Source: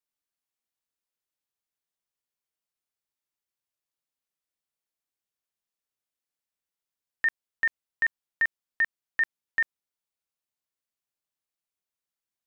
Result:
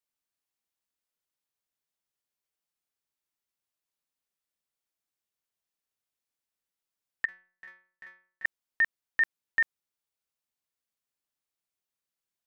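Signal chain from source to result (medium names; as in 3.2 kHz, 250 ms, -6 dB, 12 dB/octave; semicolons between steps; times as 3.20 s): 7.25–8.45 s: inharmonic resonator 180 Hz, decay 0.48 s, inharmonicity 0.002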